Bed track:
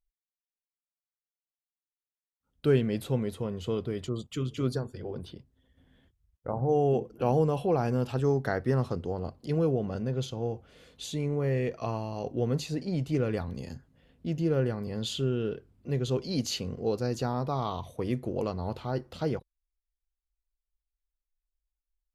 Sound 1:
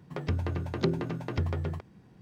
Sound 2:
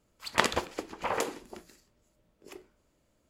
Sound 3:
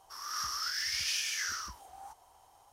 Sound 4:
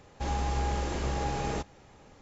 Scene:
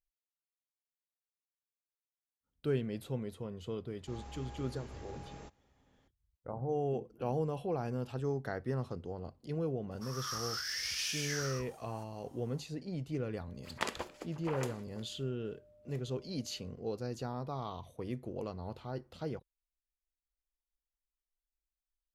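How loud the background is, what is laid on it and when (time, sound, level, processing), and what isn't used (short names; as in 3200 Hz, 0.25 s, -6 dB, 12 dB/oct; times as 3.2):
bed track -9 dB
3.87 add 4 -18 dB
9.91 add 3 -3.5 dB
13.43 add 2 -10.5 dB + whine 600 Hz -50 dBFS
not used: 1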